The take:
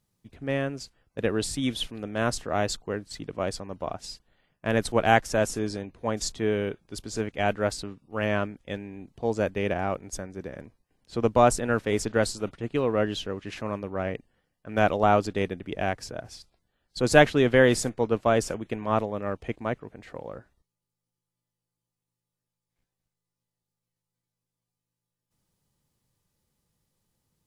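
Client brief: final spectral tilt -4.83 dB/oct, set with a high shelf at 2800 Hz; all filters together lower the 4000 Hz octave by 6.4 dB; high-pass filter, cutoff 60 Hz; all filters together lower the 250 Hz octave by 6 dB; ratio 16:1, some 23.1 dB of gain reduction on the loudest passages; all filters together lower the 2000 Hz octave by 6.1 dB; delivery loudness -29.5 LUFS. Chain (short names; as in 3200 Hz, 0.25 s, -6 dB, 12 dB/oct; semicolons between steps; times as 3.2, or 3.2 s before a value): HPF 60 Hz; bell 250 Hz -7.5 dB; bell 2000 Hz -6 dB; high shelf 2800 Hz -4 dB; bell 4000 Hz -3 dB; compressor 16:1, threshold -37 dBFS; gain +14.5 dB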